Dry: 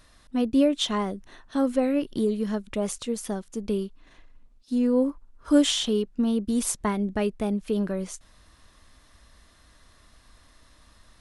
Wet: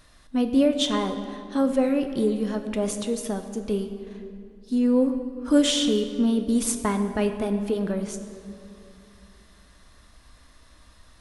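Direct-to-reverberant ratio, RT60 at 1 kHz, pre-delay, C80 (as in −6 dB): 7.0 dB, 2.3 s, 6 ms, 9.5 dB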